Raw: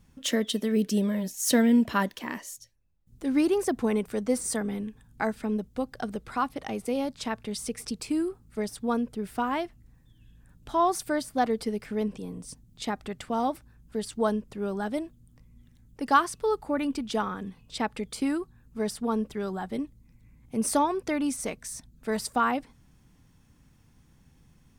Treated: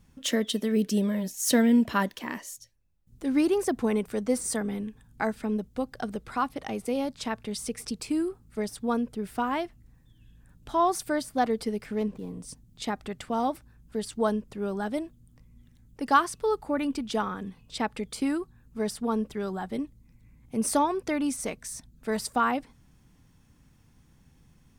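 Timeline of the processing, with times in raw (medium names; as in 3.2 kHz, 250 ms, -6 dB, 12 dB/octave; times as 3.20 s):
11.95–12.41 s: median filter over 15 samples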